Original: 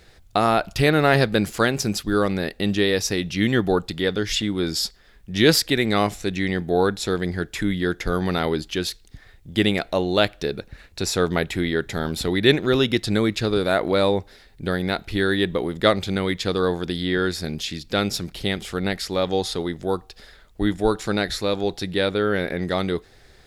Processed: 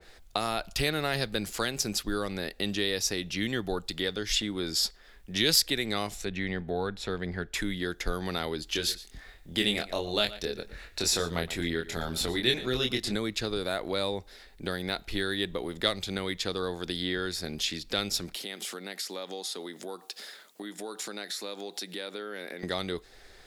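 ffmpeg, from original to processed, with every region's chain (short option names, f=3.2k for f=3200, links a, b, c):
-filter_complex "[0:a]asettb=1/sr,asplit=3[a][b][c];[a]atrim=end=6.254[d];[b]atrim=start=6.25:end=7.54,asetpts=PTS-STARTPTS,afade=t=in:d=0.004:c=qsin,afade=t=out:st=1.286:d=0.004:c=qsin,bass=f=250:g=3,treble=f=4k:g=-15,bandreject=f=320:w=5.3[e];[c]atrim=start=7.536[f];[d][e]acrossfade=d=0.004:c1=hsin:c2=qsin[g];[g][f]acrossfade=d=0.004:c1=qsin:c2=hsin,asettb=1/sr,asplit=3[h][i][j];[h]atrim=end=8.664[k];[i]atrim=start=8.66:end=13.15,asetpts=PTS-STARTPTS,afade=t=in:d=0.004:c=qsin,afade=t=out:st=4.486:d=0.004:c=qsin,asplit=2[l][m];[m]adelay=24,volume=-3.5dB[n];[l][n]amix=inputs=2:normalize=0,atrim=end_sample=198009,aecho=1:1:117:0.133,atrim=end_sample=198009[o];[j]atrim=start=13.146[p];[k][o]acrossfade=d=0.004:c1=hsin:c2=qsin[q];[q][p]acrossfade=d=0.004:c1=qsin:c2=hsin,asettb=1/sr,asplit=3[r][s][t];[r]atrim=end=18.344[u];[s]atrim=start=18.34:end=22.63,asetpts=PTS-STARTPTS,afade=t=in:d=0.004:c=qsin,afade=t=out:st=4.286:d=0.004:c=qsin,highshelf=f=4.3k:g=10.5,acompressor=threshold=-32dB:ratio=6:attack=3.2:release=140:knee=1:detection=peak,highpass=f=180:w=0.5412,highpass=f=180:w=1.3066[v];[t]atrim=start=22.626[w];[u][v]acrossfade=d=0.004:c1=hsin:c2=qsin[x];[x][w]acrossfade=d=0.004:c1=qsin:c2=hsin,equalizer=f=110:t=o:w=1.9:g=-12,acrossover=split=150|3000[y][z][aa];[z]acompressor=threshold=-34dB:ratio=2.5[ab];[y][ab][aa]amix=inputs=3:normalize=0,adynamicequalizer=threshold=0.0112:dfrequency=1900:dqfactor=0.7:tfrequency=1900:tqfactor=0.7:attack=5:release=100:ratio=0.375:range=2:mode=cutabove:tftype=highshelf"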